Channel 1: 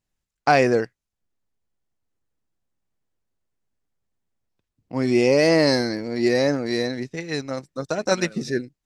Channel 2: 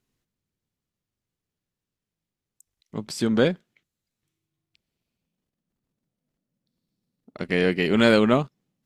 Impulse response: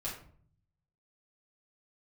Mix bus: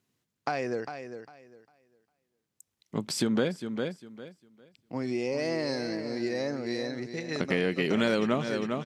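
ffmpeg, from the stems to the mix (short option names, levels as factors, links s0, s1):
-filter_complex "[0:a]lowpass=9100,acompressor=threshold=0.0447:ratio=2.5,volume=0.631,asplit=2[s0][s1];[s1]volume=0.316[s2];[1:a]volume=1.19,asplit=2[s3][s4];[s4]volume=0.224[s5];[s2][s5]amix=inputs=2:normalize=0,aecho=0:1:402|804|1206|1608:1|0.22|0.0484|0.0106[s6];[s0][s3][s6]amix=inputs=3:normalize=0,highpass=100,acompressor=threshold=0.0631:ratio=4"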